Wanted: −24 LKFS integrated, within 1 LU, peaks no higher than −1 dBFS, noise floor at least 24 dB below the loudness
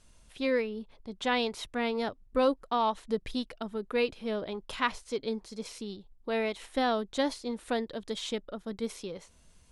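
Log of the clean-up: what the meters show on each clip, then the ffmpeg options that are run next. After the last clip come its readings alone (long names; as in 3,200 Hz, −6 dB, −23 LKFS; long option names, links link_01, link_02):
integrated loudness −32.5 LKFS; sample peak −12.5 dBFS; target loudness −24.0 LKFS
→ -af "volume=8.5dB"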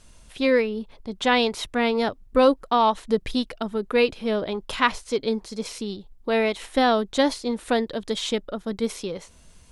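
integrated loudness −24.0 LKFS; sample peak −4.0 dBFS; background noise floor −52 dBFS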